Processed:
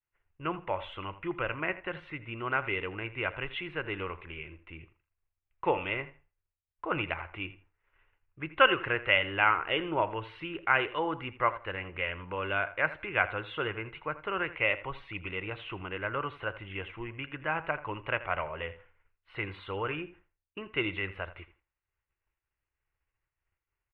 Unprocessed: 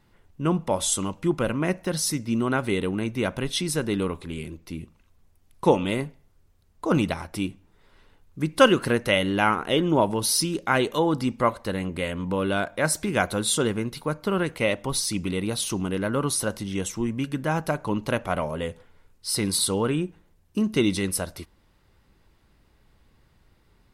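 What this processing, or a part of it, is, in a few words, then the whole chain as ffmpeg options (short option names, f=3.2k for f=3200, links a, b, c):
hearing-loss simulation: -filter_complex "[0:a]lowpass=2.3k,firequalizer=gain_entry='entry(100,0);entry(220,-17);entry(330,-3);entry(1300,7);entry(2700,14);entry(5000,-29)':delay=0.05:min_phase=1,agate=range=-33dB:threshold=-46dB:ratio=3:detection=peak,asplit=2[a][b];[b]adelay=82,lowpass=f=4.7k:p=1,volume=-15.5dB,asplit=2[c][d];[d]adelay=82,lowpass=f=4.7k:p=1,volume=0.18[e];[a][c][e]amix=inputs=3:normalize=0,volume=-8dB"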